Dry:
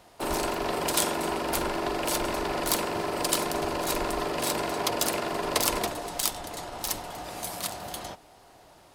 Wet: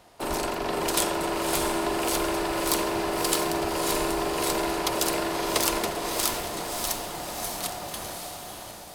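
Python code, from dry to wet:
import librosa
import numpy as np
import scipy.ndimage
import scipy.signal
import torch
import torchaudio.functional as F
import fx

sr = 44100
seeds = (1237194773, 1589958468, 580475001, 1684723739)

y = fx.echo_diffused(x, sr, ms=602, feedback_pct=49, wet_db=-4)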